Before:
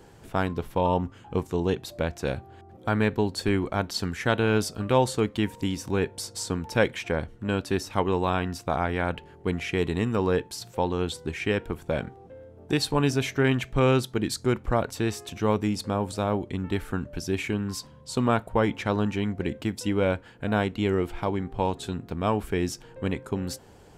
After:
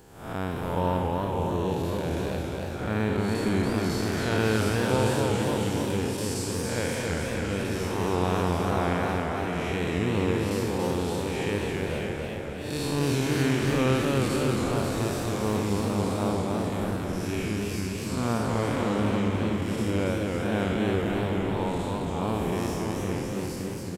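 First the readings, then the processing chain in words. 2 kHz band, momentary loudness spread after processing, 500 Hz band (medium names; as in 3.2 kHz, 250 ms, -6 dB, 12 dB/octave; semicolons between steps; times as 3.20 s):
-0.5 dB, 6 LU, -0.5 dB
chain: spectral blur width 244 ms; treble shelf 8.6 kHz +11 dB; on a send: delay 536 ms -6.5 dB; on the sum: modulated delay 278 ms, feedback 59%, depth 143 cents, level -3 dB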